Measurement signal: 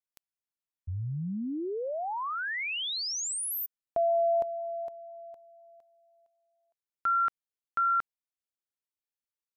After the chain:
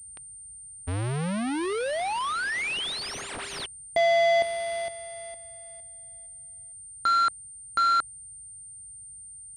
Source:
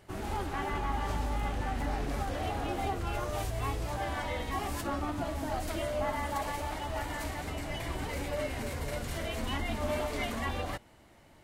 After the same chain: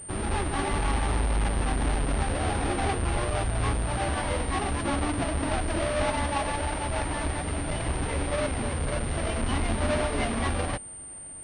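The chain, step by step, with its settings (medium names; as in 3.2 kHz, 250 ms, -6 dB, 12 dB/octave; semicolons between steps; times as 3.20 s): square wave that keeps the level; band noise 32–130 Hz -66 dBFS; class-D stage that switches slowly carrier 8.9 kHz; trim +2 dB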